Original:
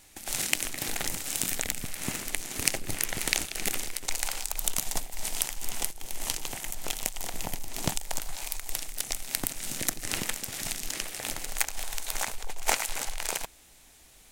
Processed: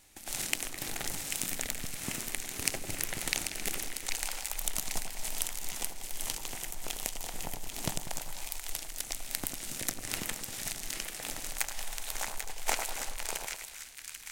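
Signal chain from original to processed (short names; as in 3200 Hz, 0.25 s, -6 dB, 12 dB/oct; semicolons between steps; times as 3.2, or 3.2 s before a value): split-band echo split 1400 Hz, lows 97 ms, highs 0.79 s, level -7 dB; gain -5 dB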